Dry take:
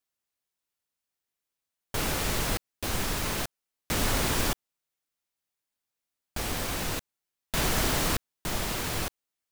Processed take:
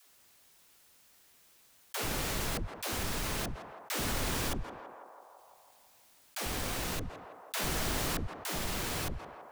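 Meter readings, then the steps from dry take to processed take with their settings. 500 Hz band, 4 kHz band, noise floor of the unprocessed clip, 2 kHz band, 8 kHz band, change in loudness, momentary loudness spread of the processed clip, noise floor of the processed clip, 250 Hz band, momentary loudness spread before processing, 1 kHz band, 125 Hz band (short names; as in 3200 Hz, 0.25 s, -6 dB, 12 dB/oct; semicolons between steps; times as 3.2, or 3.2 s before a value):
-5.0 dB, -5.0 dB, under -85 dBFS, -5.0 dB, -5.0 dB, -5.5 dB, 14 LU, -63 dBFS, -5.0 dB, 10 LU, -4.5 dB, -5.0 dB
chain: dispersion lows, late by 0.103 s, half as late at 300 Hz; on a send: narrowing echo 0.166 s, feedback 55%, band-pass 800 Hz, level -16 dB; on the sum: fast leveller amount 50%; gain -7.5 dB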